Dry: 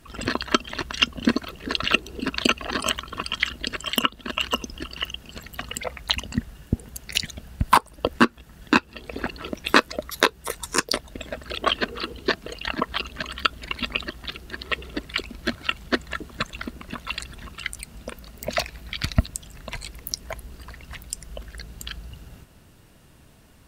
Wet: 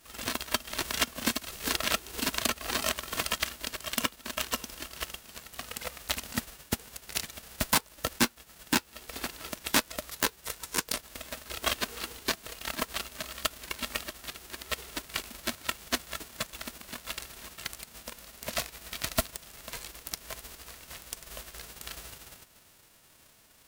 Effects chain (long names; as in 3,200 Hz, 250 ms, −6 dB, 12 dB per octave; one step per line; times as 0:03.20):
spectral envelope flattened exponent 0.3
wave folding −7 dBFS
0:00.54–0:03.37: multiband upward and downward compressor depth 100%
level −7 dB